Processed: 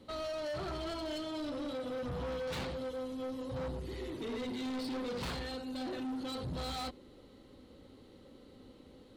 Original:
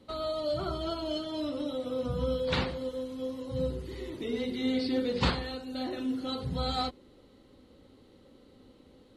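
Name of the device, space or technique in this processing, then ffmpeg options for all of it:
saturation between pre-emphasis and de-emphasis: -af "highshelf=frequency=4100:gain=7,asoftclip=type=tanh:threshold=-36.5dB,highshelf=frequency=4100:gain=-7,volume=1dB"

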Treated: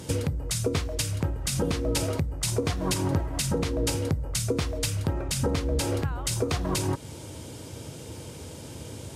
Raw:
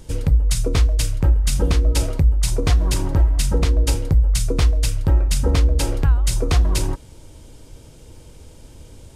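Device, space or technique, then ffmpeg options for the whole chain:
podcast mastering chain: -af "highpass=frequency=88:width=0.5412,highpass=frequency=88:width=1.3066,acompressor=threshold=-31dB:ratio=2,alimiter=limit=-22dB:level=0:latency=1:release=174,volume=7dB" -ar 44100 -c:a libmp3lame -b:a 96k

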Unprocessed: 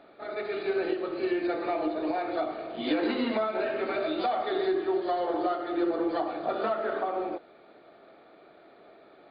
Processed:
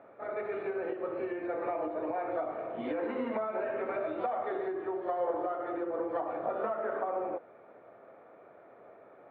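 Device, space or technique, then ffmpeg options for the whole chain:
bass amplifier: -af "acompressor=threshold=-29dB:ratio=6,highpass=71,equalizer=frequency=110:width_type=q:width=4:gain=8,equalizer=frequency=330:width_type=q:width=4:gain=-4,equalizer=frequency=520:width_type=q:width=4:gain=7,equalizer=frequency=990:width_type=q:width=4:gain=6,lowpass=frequency=2200:width=0.5412,lowpass=frequency=2200:width=1.3066,volume=-2.5dB"

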